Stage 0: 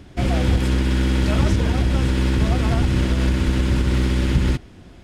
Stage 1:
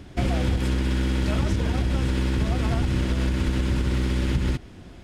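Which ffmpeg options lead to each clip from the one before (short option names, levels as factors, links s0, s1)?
-af "acompressor=threshold=0.112:ratio=6"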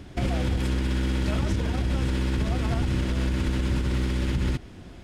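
-af "alimiter=limit=0.15:level=0:latency=1:release=58"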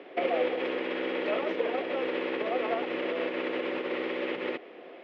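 -af "highpass=f=400:w=0.5412,highpass=f=400:w=1.3066,equalizer=f=490:t=q:w=4:g=6,equalizer=f=930:t=q:w=4:g=-6,equalizer=f=1500:t=q:w=4:g=-9,lowpass=f=2600:w=0.5412,lowpass=f=2600:w=1.3066,volume=2"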